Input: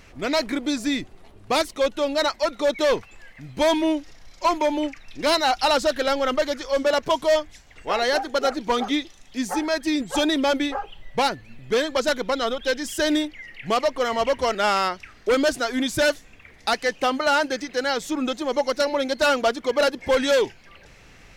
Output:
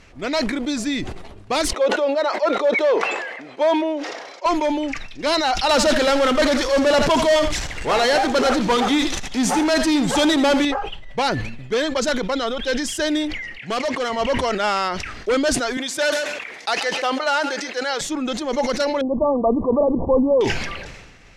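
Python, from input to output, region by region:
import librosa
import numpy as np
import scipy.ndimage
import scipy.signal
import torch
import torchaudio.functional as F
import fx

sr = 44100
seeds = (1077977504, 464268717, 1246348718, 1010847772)

y = fx.chain(x, sr, fx.highpass(hz=440.0, slope=24),
    fx.tilt_eq(slope=-4.0), at=(1.73, 4.46))
y = fx.chain(y, sr, fx.power_curve(exponent=0.5),
    fx.echo_single(ms=81, db=-12.0), at=(5.69, 10.65))
y = fx.chain(y, sr, fx.bandpass_edges(low_hz=130.0, high_hz=7600.0),
    fx.high_shelf(hz=6000.0, db=9.0),
    fx.clip_hard(threshold_db=-19.5), at=(13.58, 14.1))
y = fx.chain(y, sr, fx.highpass(hz=430.0, slope=12),
    fx.echo_feedback(ms=137, feedback_pct=17, wet_db=-20.0), at=(15.77, 18.01))
y = fx.chain(y, sr, fx.brickwall_lowpass(high_hz=1200.0),
    fx.low_shelf(hz=340.0, db=8.5), at=(19.01, 20.41))
y = scipy.signal.sosfilt(scipy.signal.butter(2, 8900.0, 'lowpass', fs=sr, output='sos'), y)
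y = fx.sustainer(y, sr, db_per_s=42.0)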